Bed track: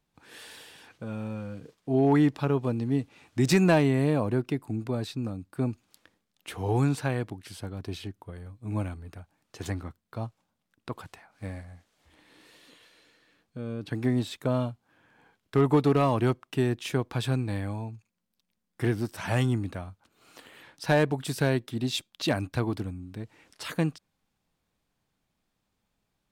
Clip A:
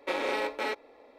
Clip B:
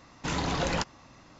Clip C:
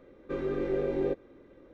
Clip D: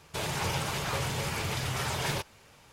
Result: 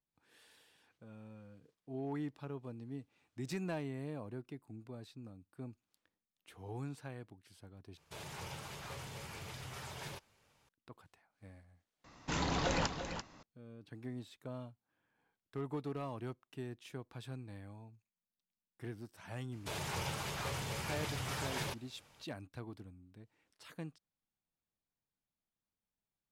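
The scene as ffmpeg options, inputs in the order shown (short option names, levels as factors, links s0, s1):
-filter_complex "[4:a]asplit=2[s0][s1];[0:a]volume=0.119[s2];[2:a]aecho=1:1:340:0.376[s3];[s2]asplit=2[s4][s5];[s4]atrim=end=7.974[s6];[s0]atrim=end=2.72,asetpts=PTS-STARTPTS,volume=0.178[s7];[s5]atrim=start=10.686[s8];[s3]atrim=end=1.39,asetpts=PTS-STARTPTS,volume=0.562,afade=t=in:d=0.004:c=hsin,afade=t=out:st=1.386:d=0.004:c=hsin,adelay=12040[s9];[s1]atrim=end=2.72,asetpts=PTS-STARTPTS,volume=0.398,afade=t=in:d=0.004:c=hsin,afade=t=out:st=2.716:d=0.004:c=hsin,adelay=19520[s10];[s6][s7]acrossfade=d=0.004:c1=hsin:c2=hsin[s11];[s11][s8]acrossfade=d=0.004:c1=hsin:c2=hsin[s12];[s12][s9][s10]amix=inputs=3:normalize=0"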